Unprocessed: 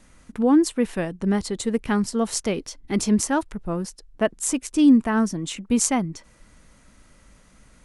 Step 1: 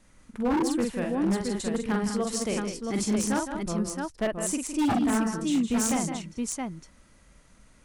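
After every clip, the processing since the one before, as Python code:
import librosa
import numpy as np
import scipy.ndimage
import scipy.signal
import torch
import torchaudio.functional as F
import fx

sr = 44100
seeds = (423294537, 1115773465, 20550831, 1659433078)

y = fx.echo_multitap(x, sr, ms=(46, 162, 200, 671), db=(-4.0, -9.5, -9.0, -4.5))
y = 10.0 ** (-12.5 / 20.0) * (np.abs((y / 10.0 ** (-12.5 / 20.0) + 3.0) % 4.0 - 2.0) - 1.0)
y = y * 10.0 ** (-6.5 / 20.0)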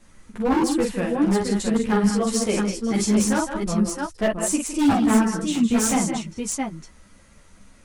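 y = fx.ensemble(x, sr)
y = y * 10.0 ** (8.5 / 20.0)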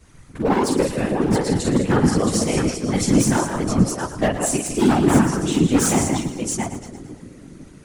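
y = fx.echo_split(x, sr, split_hz=450.0, low_ms=503, high_ms=113, feedback_pct=52, wet_db=-12.0)
y = fx.whisperise(y, sr, seeds[0])
y = y * 10.0 ** (2.0 / 20.0)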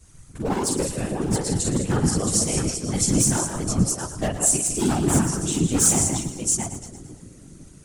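y = fx.graphic_eq(x, sr, hz=(250, 500, 1000, 2000, 4000, 8000), db=(-6, -5, -5, -7, -3, 7))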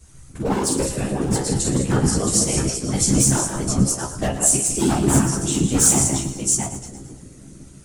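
y = fx.comb_fb(x, sr, f0_hz=67.0, decay_s=0.19, harmonics='all', damping=0.0, mix_pct=80)
y = y * 10.0 ** (7.5 / 20.0)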